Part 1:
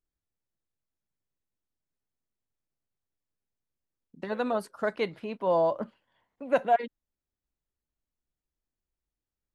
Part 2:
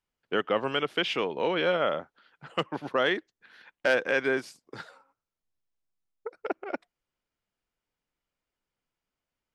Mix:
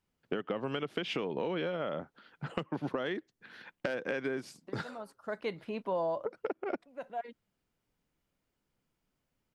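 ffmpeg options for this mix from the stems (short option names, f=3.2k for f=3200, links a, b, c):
-filter_complex "[0:a]adelay=450,volume=-1.5dB[a];[1:a]equalizer=f=160:t=o:w=2.8:g=10,acompressor=threshold=-30dB:ratio=6,volume=1.5dB,asplit=2[b][c];[c]apad=whole_len=440979[d];[a][d]sidechaincompress=threshold=-47dB:ratio=8:attack=5.4:release=696[e];[e][b]amix=inputs=2:normalize=0,acompressor=threshold=-30dB:ratio=4"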